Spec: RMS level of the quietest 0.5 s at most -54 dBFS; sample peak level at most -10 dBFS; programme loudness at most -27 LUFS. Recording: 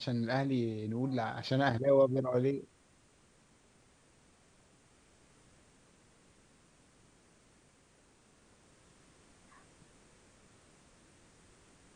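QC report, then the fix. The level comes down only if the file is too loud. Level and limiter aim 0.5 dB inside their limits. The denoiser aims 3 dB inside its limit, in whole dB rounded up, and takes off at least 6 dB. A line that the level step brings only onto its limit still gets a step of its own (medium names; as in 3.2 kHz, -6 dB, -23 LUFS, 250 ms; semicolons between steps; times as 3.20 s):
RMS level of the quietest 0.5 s -66 dBFS: pass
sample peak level -16.0 dBFS: pass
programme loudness -32.0 LUFS: pass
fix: none needed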